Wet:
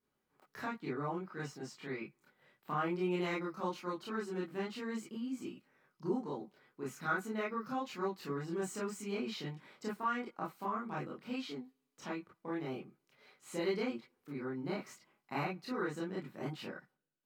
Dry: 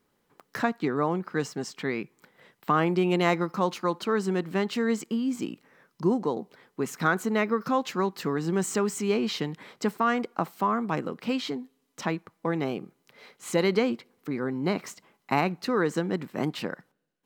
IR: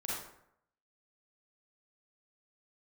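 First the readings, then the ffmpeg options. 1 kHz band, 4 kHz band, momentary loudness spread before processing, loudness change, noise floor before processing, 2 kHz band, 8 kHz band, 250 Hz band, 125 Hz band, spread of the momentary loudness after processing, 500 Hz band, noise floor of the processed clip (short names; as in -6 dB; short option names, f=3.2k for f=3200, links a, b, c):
-11.0 dB, -12.0 dB, 11 LU, -11.5 dB, -73 dBFS, -10.5 dB, -13.5 dB, -12.0 dB, -12.0 dB, 12 LU, -12.0 dB, -83 dBFS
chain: -filter_complex "[1:a]atrim=start_sample=2205,atrim=end_sample=4410,asetrate=74970,aresample=44100[a];[0:a][a]afir=irnorm=-1:irlink=0,volume=-8.5dB"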